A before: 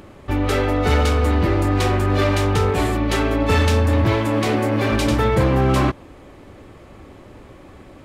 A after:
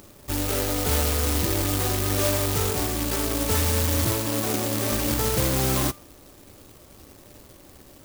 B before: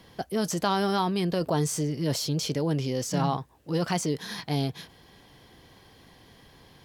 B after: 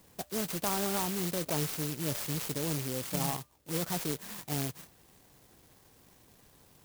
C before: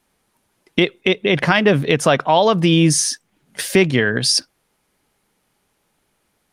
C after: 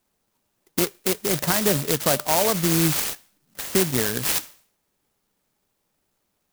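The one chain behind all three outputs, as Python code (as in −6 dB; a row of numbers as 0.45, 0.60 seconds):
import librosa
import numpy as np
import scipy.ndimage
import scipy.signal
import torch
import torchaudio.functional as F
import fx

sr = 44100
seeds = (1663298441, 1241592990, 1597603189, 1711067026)

y = fx.comb_fb(x, sr, f0_hz=600.0, decay_s=0.49, harmonics='all', damping=0.0, mix_pct=60)
y = (np.kron(y[::2], np.eye(2)[0]) * 2)[:len(y)]
y = fx.clock_jitter(y, sr, seeds[0], jitter_ms=0.11)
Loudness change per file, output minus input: −4.5, −5.0, −5.0 LU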